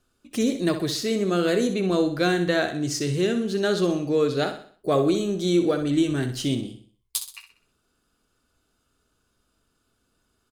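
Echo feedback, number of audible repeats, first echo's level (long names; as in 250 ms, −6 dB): 42%, 4, −9.5 dB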